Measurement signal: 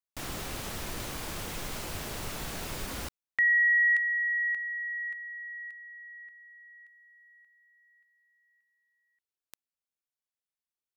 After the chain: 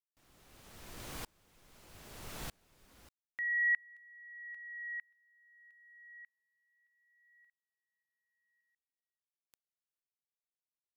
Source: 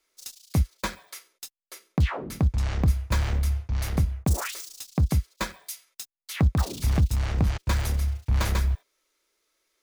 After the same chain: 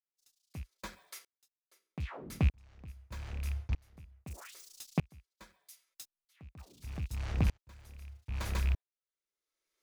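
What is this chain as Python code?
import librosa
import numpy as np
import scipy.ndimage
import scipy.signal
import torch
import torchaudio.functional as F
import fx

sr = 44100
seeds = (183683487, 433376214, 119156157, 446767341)

y = fx.rattle_buzz(x, sr, strikes_db=-20.0, level_db=-24.0)
y = fx.vibrato(y, sr, rate_hz=0.32, depth_cents=5.6)
y = fx.tremolo_decay(y, sr, direction='swelling', hz=0.8, depth_db=33)
y = y * 10.0 ** (-4.0 / 20.0)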